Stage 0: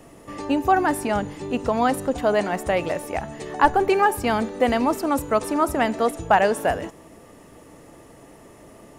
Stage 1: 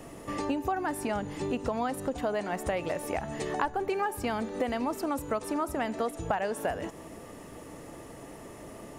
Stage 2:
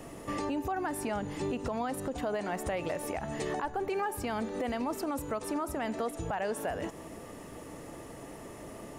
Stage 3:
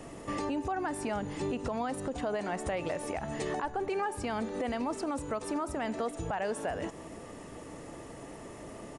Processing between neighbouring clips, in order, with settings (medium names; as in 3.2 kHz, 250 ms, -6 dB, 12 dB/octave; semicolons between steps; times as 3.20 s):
compression 5:1, threshold -30 dBFS, peak gain reduction 17.5 dB; trim +1.5 dB
peak limiter -24.5 dBFS, peak gain reduction 11 dB
resampled via 22.05 kHz